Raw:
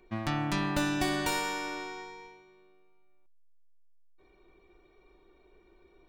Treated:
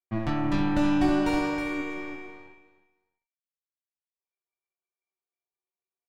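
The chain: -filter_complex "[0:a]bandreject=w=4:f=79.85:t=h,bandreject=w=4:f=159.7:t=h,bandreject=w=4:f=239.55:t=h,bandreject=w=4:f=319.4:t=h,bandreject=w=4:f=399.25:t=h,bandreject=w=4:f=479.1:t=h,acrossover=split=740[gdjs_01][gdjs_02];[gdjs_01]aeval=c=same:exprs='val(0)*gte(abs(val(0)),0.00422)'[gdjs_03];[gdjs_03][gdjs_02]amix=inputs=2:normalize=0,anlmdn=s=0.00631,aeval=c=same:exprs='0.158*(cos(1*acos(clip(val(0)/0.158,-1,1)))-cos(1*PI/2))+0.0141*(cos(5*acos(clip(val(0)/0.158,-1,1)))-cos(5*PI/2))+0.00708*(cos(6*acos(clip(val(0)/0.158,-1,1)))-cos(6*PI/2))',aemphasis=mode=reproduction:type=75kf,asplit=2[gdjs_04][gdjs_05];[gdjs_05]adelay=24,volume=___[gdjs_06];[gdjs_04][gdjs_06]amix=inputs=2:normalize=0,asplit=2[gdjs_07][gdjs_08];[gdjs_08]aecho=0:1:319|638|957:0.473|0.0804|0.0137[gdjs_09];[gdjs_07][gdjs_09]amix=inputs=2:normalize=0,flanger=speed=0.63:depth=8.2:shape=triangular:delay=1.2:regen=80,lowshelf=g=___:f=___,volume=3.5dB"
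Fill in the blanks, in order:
-6.5dB, 7.5, 210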